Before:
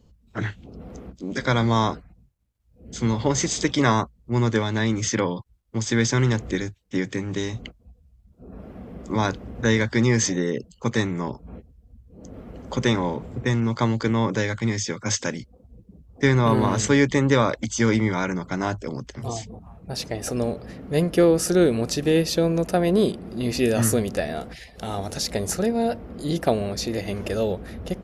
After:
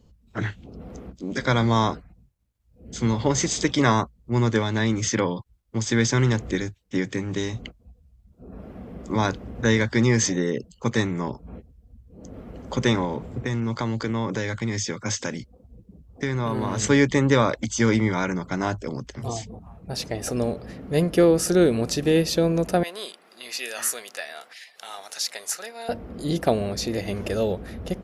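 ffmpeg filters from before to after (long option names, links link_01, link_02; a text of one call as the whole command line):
ffmpeg -i in.wav -filter_complex "[0:a]asettb=1/sr,asplit=3[link_01][link_02][link_03];[link_01]atrim=end=13.044[link_04];[link_02]atrim=start=13.04:end=16.82,asetpts=PTS-STARTPTS,afade=type=in:duration=0.004:curve=qsin,afade=type=out:start_time=3.776:duration=0.004:curve=qsin,acompressor=threshold=-22dB:ratio=4:attack=3.2:release=140:knee=1:detection=peak[link_05];[link_03]atrim=start=16.816[link_06];[link_04][link_05]acrossfade=duration=0.004:curve1=hsin:curve2=qsin[link_07];[link_07][link_06]acrossfade=duration=0.004:curve1=qsin:curve2=hsin,asettb=1/sr,asplit=3[link_08][link_09][link_10];[link_08]atrim=end=22.834[link_11];[link_09]atrim=start=22.83:end=25.89,asetpts=PTS-STARTPTS,afade=type=in:duration=0.004:curve=qsin,afade=type=out:start_time=3.056:duration=0.004:curve=qsin,highpass=1200[link_12];[link_10]atrim=start=25.886[link_13];[link_11][link_12]acrossfade=duration=0.004:curve1=hsin:curve2=qsin[link_14];[link_14][link_13]acrossfade=duration=0.004:curve1=qsin:curve2=hsin" out.wav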